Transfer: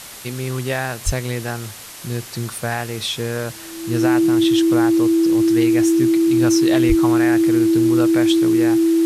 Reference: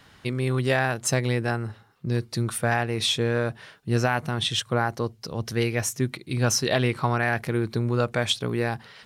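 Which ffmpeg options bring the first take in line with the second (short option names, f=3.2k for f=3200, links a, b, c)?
-filter_complex "[0:a]bandreject=f=330:w=30,asplit=3[a][b][c];[a]afade=t=out:st=1.05:d=0.02[d];[b]highpass=f=140:w=0.5412,highpass=f=140:w=1.3066,afade=t=in:st=1.05:d=0.02,afade=t=out:st=1.17:d=0.02[e];[c]afade=t=in:st=1.17:d=0.02[f];[d][e][f]amix=inputs=3:normalize=0,asplit=3[g][h][i];[g]afade=t=out:st=6.88:d=0.02[j];[h]highpass=f=140:w=0.5412,highpass=f=140:w=1.3066,afade=t=in:st=6.88:d=0.02,afade=t=out:st=7:d=0.02[k];[i]afade=t=in:st=7:d=0.02[l];[j][k][l]amix=inputs=3:normalize=0,afwtdn=0.018"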